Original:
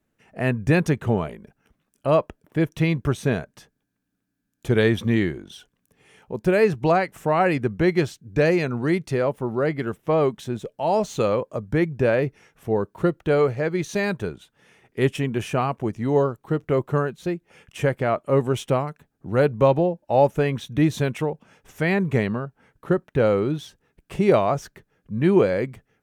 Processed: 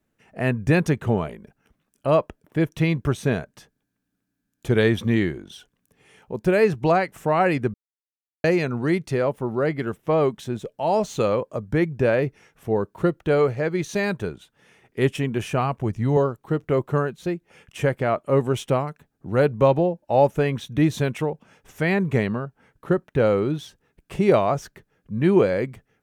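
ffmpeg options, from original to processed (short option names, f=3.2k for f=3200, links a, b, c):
-filter_complex "[0:a]asettb=1/sr,asplit=3[a][b][c];[a]atrim=end=15.404[d];[b]atrim=start=15.4:end=16.17,asetpts=PTS-STARTPTS,afade=t=in:d=0.004:c=qsin,afade=t=out:st=0.766:d=0.004:c=qsin,asubboost=boost=11:cutoff=160[e];[c]atrim=start=16.166[f];[d][e]acrossfade=d=0.004:c1=hsin:c2=qsin[g];[g][f]acrossfade=d=0.004:c1=qsin:c2=hsin,asplit=3[h][i][j];[h]atrim=end=7.74,asetpts=PTS-STARTPTS,afade=t=out:st=7.736:d=0.004:c=hsin[k];[i]atrim=start=7.74:end=8.44,asetpts=PTS-STARTPTS,volume=0[l];[j]atrim=start=8.44,asetpts=PTS-STARTPTS,afade=t=in:d=0.004:c=hsin[m];[k][l][m]concat=n=3:v=0:a=1"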